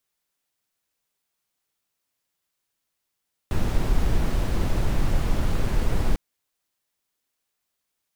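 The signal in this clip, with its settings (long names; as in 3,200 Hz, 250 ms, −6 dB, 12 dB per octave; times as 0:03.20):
noise brown, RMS −20 dBFS 2.65 s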